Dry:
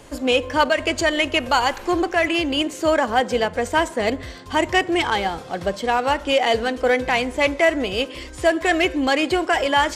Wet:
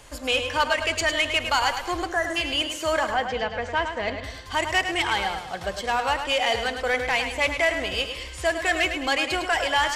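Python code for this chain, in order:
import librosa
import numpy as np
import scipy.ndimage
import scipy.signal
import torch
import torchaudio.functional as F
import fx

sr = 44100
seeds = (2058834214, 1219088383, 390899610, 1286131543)

y = fx.peak_eq(x, sr, hz=280.0, db=-12.0, octaves=2.3)
y = 10.0 ** (-12.5 / 20.0) * np.tanh(y / 10.0 ** (-12.5 / 20.0))
y = fx.air_absorb(y, sr, metres=180.0, at=(3.11, 4.24))
y = fx.echo_feedback(y, sr, ms=105, feedback_pct=39, wet_db=-8.0)
y = fx.spec_repair(y, sr, seeds[0], start_s=2.14, length_s=0.2, low_hz=2000.0, high_hz=5700.0, source='before')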